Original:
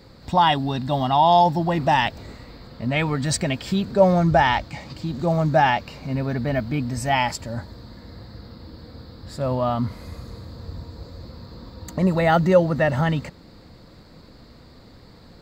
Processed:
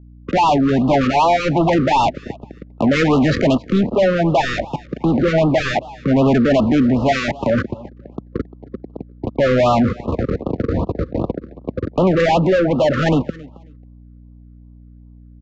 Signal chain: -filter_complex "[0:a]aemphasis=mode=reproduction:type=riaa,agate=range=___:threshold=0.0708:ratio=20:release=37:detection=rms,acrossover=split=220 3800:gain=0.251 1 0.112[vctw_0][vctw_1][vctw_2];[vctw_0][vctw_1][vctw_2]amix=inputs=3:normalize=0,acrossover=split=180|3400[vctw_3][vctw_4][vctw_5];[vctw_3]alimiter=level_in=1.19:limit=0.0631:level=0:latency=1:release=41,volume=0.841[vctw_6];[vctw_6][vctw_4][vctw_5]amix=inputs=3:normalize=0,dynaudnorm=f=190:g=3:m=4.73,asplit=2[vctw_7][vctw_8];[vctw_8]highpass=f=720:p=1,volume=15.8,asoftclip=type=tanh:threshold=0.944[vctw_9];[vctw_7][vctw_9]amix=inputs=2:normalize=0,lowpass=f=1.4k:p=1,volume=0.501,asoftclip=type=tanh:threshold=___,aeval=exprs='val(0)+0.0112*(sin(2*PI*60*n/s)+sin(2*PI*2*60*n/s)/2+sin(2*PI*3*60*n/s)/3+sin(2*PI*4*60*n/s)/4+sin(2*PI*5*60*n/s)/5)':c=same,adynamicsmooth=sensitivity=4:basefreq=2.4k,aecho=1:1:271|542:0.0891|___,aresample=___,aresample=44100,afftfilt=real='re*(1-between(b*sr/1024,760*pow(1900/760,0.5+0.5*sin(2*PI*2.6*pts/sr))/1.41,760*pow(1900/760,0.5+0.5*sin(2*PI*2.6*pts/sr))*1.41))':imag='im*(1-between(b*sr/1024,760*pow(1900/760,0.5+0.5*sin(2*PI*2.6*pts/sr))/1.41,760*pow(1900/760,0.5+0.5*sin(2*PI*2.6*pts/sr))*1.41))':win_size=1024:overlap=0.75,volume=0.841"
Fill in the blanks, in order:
0.00398, 0.376, 0.0169, 16000